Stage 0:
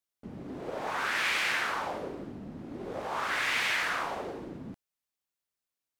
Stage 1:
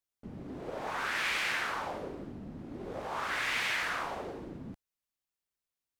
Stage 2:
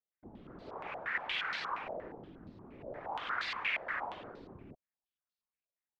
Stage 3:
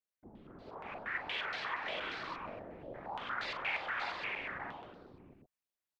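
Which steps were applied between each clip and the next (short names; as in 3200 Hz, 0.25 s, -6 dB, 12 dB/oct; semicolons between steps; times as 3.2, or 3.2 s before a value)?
low shelf 90 Hz +8 dB; gain -3 dB
whisperiser; stepped low-pass 8.5 Hz 620–4300 Hz; gain -9 dB
tapped delay 42/236/300/329/587/712 ms -10.5/-17.5/-18.5/-12.5/-3.5/-7 dB; gain -3 dB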